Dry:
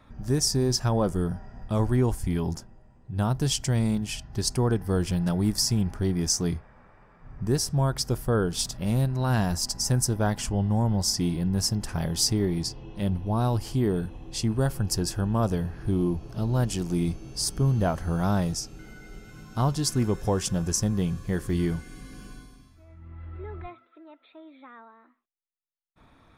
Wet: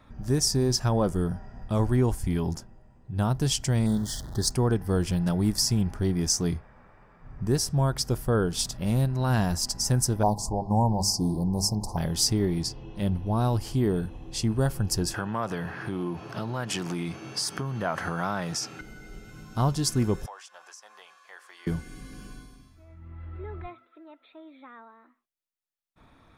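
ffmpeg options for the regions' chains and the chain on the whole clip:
-filter_complex "[0:a]asettb=1/sr,asplit=3[s0][s1][s2];[s0]atrim=end=3.864[s3];[s1]atrim=start=3.86:end=4.51,asetpts=PTS-STARTPTS,afade=t=in:d=0.004:c=qsin,afade=t=out:st=0.646:d=0.004:c=qsin,aeval=exprs='val(0)+0.5*0.0133*sgn(val(0))':c=same,asuperstop=centerf=2500:order=8:qfactor=1.8[s4];[s2]atrim=start=4.506[s5];[s3][s4]acrossfade=d=0.004:c1=hsin:c2=qsin[s6];[s6][s5]acrossfade=d=0.004:c1=qsin:c2=hsin,asettb=1/sr,asplit=3[s7][s8][s9];[s7]atrim=end=10.234[s10];[s8]atrim=start=10.23:end=11.97,asetpts=PTS-STARTPTS,afade=t=in:d=0.004:c=qsin,afade=t=out:st=1.736:d=0.004:c=qsin,asuperstop=centerf=2100:order=12:qfactor=0.64,equalizer=f=910:w=1.3:g=9,bandreject=f=50:t=h:w=6,bandreject=f=100:t=h:w=6,bandreject=f=150:t=h:w=6,bandreject=f=200:t=h:w=6,bandreject=f=250:t=h:w=6,bandreject=f=300:t=h:w=6,bandreject=f=350:t=h:w=6,bandreject=f=400:t=h:w=6[s11];[s9]atrim=start=11.966[s12];[s10][s11]acrossfade=d=0.004:c1=hsin:c2=qsin[s13];[s13][s12]acrossfade=d=0.004:c1=qsin:c2=hsin,asettb=1/sr,asplit=3[s14][s15][s16];[s14]atrim=end=15.144[s17];[s15]atrim=start=15.14:end=18.81,asetpts=PTS-STARTPTS,afade=t=in:d=0.004:c=qsin,afade=t=out:st=3.666:d=0.004:c=qsin,highpass=f=110:w=0.5412,highpass=f=110:w=1.3066,acompressor=threshold=0.0316:ratio=5:attack=3.2:release=140:knee=1:detection=peak,equalizer=f=1600:t=o:w=2.7:g=14.5[s18];[s16]atrim=start=18.806[s19];[s17][s18]acrossfade=d=0.004:c1=hsin:c2=qsin[s20];[s20][s19]acrossfade=d=0.004:c1=qsin:c2=hsin,asettb=1/sr,asplit=3[s21][s22][s23];[s21]atrim=end=20.264[s24];[s22]atrim=start=20.26:end=21.67,asetpts=PTS-STARTPTS,afade=t=in:d=0.004:c=qsin,afade=t=out:st=1.406:d=0.004:c=qsin,highpass=f=830:w=0.5412,highpass=f=830:w=1.3066,acompressor=threshold=0.00708:ratio=2:attack=3.2:release=140:knee=1:detection=peak,aemphasis=mode=reproduction:type=75kf[s25];[s23]atrim=start=21.666[s26];[s24][s25]acrossfade=d=0.004:c1=hsin:c2=qsin[s27];[s27][s26]acrossfade=d=0.004:c1=qsin:c2=hsin"

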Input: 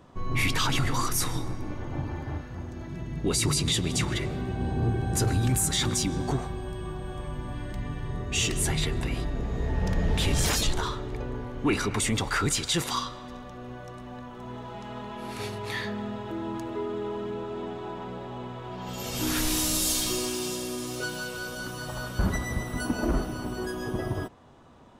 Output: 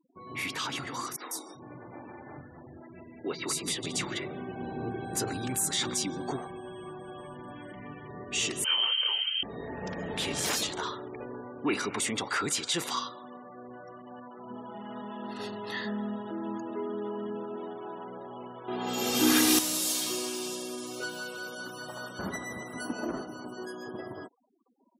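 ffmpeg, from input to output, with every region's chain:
-filter_complex "[0:a]asettb=1/sr,asplit=3[s0][s1][s2];[s0]atrim=end=1.164[s3];[s1]atrim=start=1.16:end=3.86,asetpts=PTS-STARTPTS,afade=t=in:d=0.004:c=qsin,afade=t=out:st=2.696:d=0.004:c=qsin,acrossover=split=240|3700[s4][s5][s6];[s6]adelay=150[s7];[s4]adelay=390[s8];[s8][s5][s7]amix=inputs=3:normalize=0,atrim=end_sample=119070,adynamicequalizer=threshold=0.00708:dfrequency=3700:dqfactor=0.7:tfrequency=3700:tqfactor=0.7:attack=5:release=100:ratio=0.375:range=1.5:mode=cutabove:tftype=highshelf[s9];[s2]atrim=start=3.856[s10];[s3][s9]acrossfade=d=0.004:c1=hsin:c2=qsin[s11];[s11][s10]acrossfade=d=0.004:c1=qsin:c2=hsin,asettb=1/sr,asplit=3[s12][s13][s14];[s12]atrim=end=8.644[s15];[s13]atrim=start=8.64:end=9.43,asetpts=PTS-STARTPTS,afade=t=in:d=0.004:c=qsin,afade=t=out:st=0.786:d=0.004:c=qsin,asplit=2[s16][s17];[s17]adelay=25,volume=0.596[s18];[s16][s18]amix=inputs=2:normalize=0,atrim=end_sample=34839,lowpass=f=2700:t=q:w=0.5098,lowpass=f=2700:t=q:w=0.6013,lowpass=f=2700:t=q:w=0.9,lowpass=f=2700:t=q:w=2.563,afreqshift=-3200[s19];[s14]atrim=start=9.426[s20];[s15][s19]acrossfade=d=0.004:c1=hsin:c2=qsin[s21];[s21][s20]acrossfade=d=0.004:c1=qsin:c2=hsin,asettb=1/sr,asplit=3[s22][s23][s24];[s22]atrim=end=14.504[s25];[s23]atrim=start=14.5:end=17.57,asetpts=PTS-STARTPTS,afade=t=in:d=0.004:c=qsin,afade=t=out:st=3.066:d=0.004:c=qsin,asuperstop=centerf=2300:order=8:qfactor=5.7,equalizer=f=220:t=o:w=0.29:g=11.5[s26];[s24]atrim=start=17.566[s27];[s25][s26]acrossfade=d=0.004:c1=hsin:c2=qsin[s28];[s28][s27]acrossfade=d=0.004:c1=qsin:c2=hsin,asettb=1/sr,asplit=3[s29][s30][s31];[s29]atrim=end=18.684[s32];[s30]atrim=start=18.68:end=19.59,asetpts=PTS-STARTPTS,afade=t=in:d=0.004:c=qsin,afade=t=out:st=0.906:d=0.004:c=qsin,aecho=1:1:2.5:0.53,atrim=end_sample=40131,acontrast=76,equalizer=f=230:w=4.4:g=14[s33];[s31]atrim=start=19.586[s34];[s32][s33]acrossfade=d=0.004:c1=hsin:c2=qsin[s35];[s35][s34]acrossfade=d=0.004:c1=qsin:c2=hsin,highpass=240,afftfilt=real='re*gte(hypot(re,im),0.00794)':imag='im*gte(hypot(re,im),0.00794)':win_size=1024:overlap=0.75,dynaudnorm=f=560:g=9:m=1.58,volume=0.473"

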